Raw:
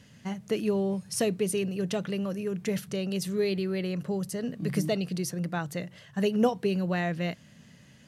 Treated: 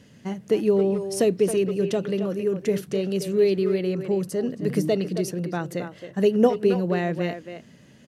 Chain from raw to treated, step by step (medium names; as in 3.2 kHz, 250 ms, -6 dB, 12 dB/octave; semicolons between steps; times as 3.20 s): peaking EQ 370 Hz +9 dB 1.4 oct; speakerphone echo 270 ms, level -8 dB